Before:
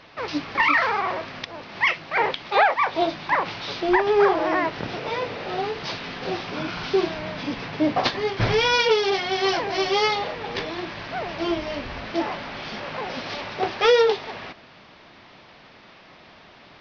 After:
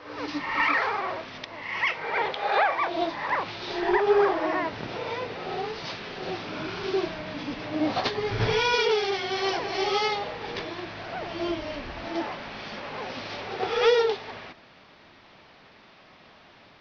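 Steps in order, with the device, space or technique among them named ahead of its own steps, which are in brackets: reverse reverb (reverse; reverberation RT60 0.80 s, pre-delay 64 ms, DRR 4.5 dB; reverse); trim -5.5 dB

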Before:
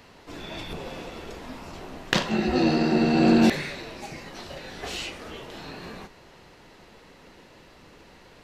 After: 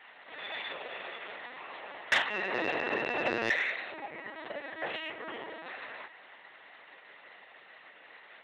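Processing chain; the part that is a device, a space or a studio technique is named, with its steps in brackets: 3.92–5.67 s: tilt EQ -4 dB/octave; talking toy (LPC vocoder at 8 kHz pitch kept; high-pass 660 Hz 12 dB/octave; peaking EQ 1.9 kHz +9 dB 0.35 oct; saturation -18 dBFS, distortion -15 dB)

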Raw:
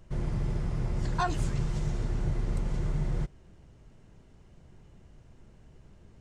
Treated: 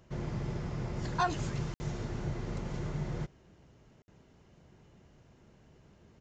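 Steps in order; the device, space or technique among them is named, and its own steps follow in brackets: call with lost packets (high-pass 150 Hz 6 dB/octave; resampled via 16 kHz; lost packets of 60 ms)

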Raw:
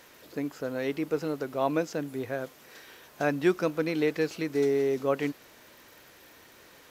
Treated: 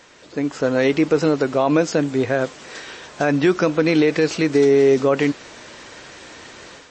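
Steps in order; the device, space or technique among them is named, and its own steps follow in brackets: low-bitrate web radio (level rider gain up to 9 dB; peak limiter -12.5 dBFS, peak gain reduction 8.5 dB; trim +6 dB; MP3 32 kbps 22.05 kHz)

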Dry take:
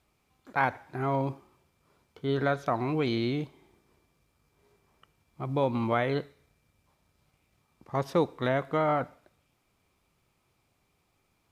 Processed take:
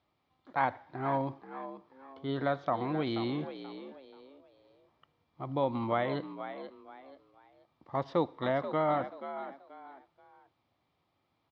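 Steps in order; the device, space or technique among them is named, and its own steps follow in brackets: frequency-shifting delay pedal into a guitar cabinet (frequency-shifting echo 482 ms, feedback 30%, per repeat +66 Hz, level -11 dB; cabinet simulation 110–4000 Hz, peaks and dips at 130 Hz -4 dB, 200 Hz -8 dB, 420 Hz -7 dB, 1.5 kHz -6 dB, 2.5 kHz -9 dB); trim -1 dB

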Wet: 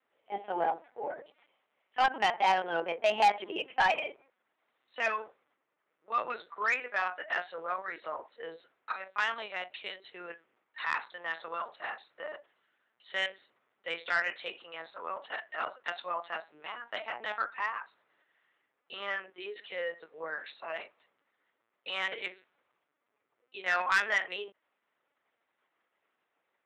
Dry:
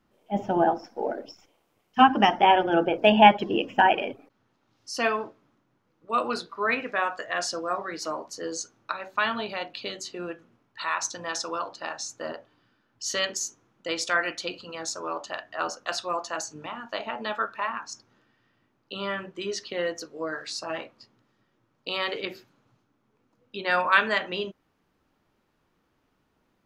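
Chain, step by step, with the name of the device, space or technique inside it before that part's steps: talking toy (LPC vocoder at 8 kHz pitch kept; high-pass 500 Hz 12 dB/octave; peaking EQ 2 kHz +6.5 dB 0.57 oct; saturation -13 dBFS, distortion -13 dB); trim -5 dB

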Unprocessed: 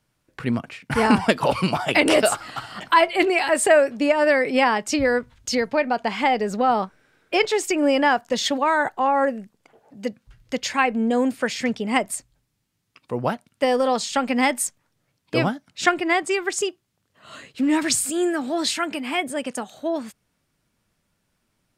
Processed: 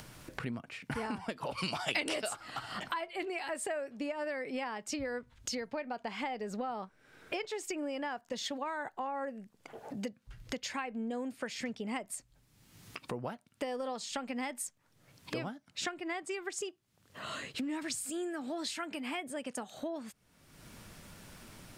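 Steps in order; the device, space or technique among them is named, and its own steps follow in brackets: upward and downward compression (upward compressor, threshold -30 dBFS; compression 6:1, threshold -33 dBFS, peak gain reduction 20 dB); 1.57–2.32 s: peaking EQ 5.2 kHz +14 dB -> +6 dB 2.8 oct; trim -3 dB

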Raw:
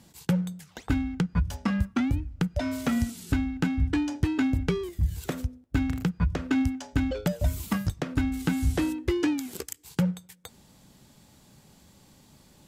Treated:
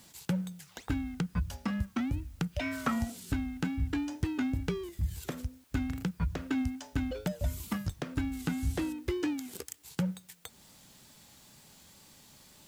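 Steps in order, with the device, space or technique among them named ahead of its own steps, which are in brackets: noise-reduction cassette on a plain deck (tape noise reduction on one side only encoder only; wow and flutter; white noise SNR 32 dB); 2.52–3.18 s: peaking EQ 3.2 kHz -> 530 Hz +14 dB 0.75 oct; trim -6.5 dB

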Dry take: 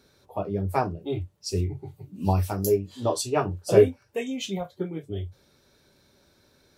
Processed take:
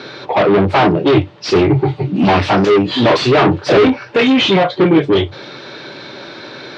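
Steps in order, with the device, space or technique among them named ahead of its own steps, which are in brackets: overdrive pedal into a guitar cabinet (overdrive pedal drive 41 dB, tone 6.8 kHz, clips at -4 dBFS; cabinet simulation 84–4000 Hz, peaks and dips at 84 Hz -6 dB, 130 Hz +9 dB, 320 Hz +6 dB)

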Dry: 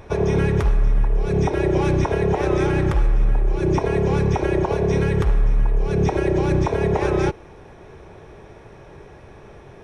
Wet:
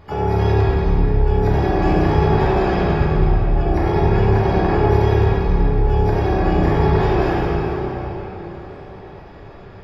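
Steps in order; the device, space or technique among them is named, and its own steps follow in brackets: spectral gate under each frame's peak -30 dB strong; shimmer-style reverb (harmony voices +12 st -5 dB; reverberation RT60 4.6 s, pre-delay 4 ms, DRR -8 dB); trim -7.5 dB

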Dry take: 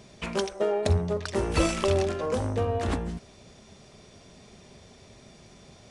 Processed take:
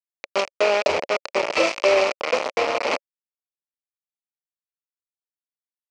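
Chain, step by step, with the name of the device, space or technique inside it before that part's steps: hand-held game console (bit crusher 4-bit; cabinet simulation 500–5300 Hz, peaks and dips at 560 Hz +9 dB, 1.6 kHz -8 dB, 2.4 kHz +7 dB, 3.6 kHz -7 dB); trim +5 dB

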